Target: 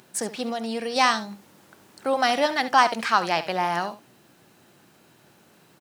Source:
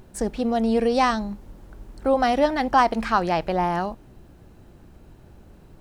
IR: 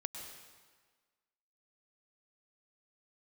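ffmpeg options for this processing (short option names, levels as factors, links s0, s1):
-filter_complex "[0:a]highpass=f=130:w=0.5412,highpass=f=130:w=1.3066,tiltshelf=f=970:g=-7.5,asettb=1/sr,asplit=3[s0][s1][s2];[s0]atrim=end=0.494[s3];[s1]atrim=start=0.49:end=0.96,asetpts=PTS-STARTPTS,afade=t=in:d=0.004:c=qsin,afade=t=out:st=0.466:d=0.004:c=qsin,acompressor=threshold=0.0501:ratio=6[s4];[s2]atrim=start=0.956[s5];[s3][s4]acrossfade=d=0.004:c1=hsin:c2=qsin[s6];[s6][s5]acrossfade=d=0.004:c1=qsin:c2=hsin,asplit=2[s7][s8];[s8]aecho=0:1:70:0.2[s9];[s7][s9]amix=inputs=2:normalize=0"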